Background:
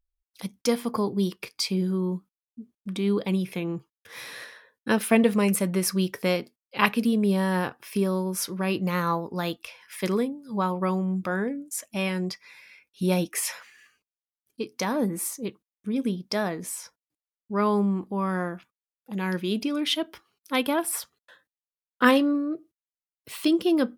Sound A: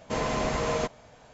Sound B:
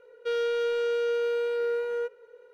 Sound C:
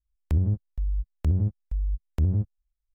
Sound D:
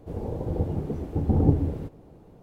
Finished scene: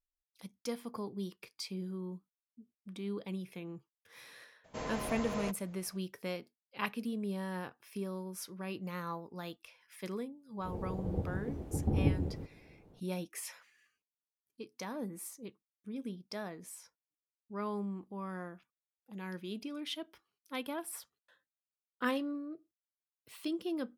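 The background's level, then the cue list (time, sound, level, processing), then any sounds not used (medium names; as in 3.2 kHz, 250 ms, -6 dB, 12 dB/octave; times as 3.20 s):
background -14.5 dB
4.64 s: add A -11.5 dB
10.58 s: add D -9 dB
not used: B, C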